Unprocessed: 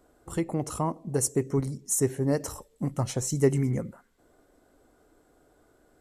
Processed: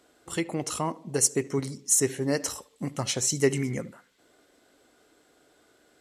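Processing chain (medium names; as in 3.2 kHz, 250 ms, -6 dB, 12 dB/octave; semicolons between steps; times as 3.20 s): frequency weighting D; on a send: tape echo 73 ms, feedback 42%, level -20 dB, low-pass 2.4 kHz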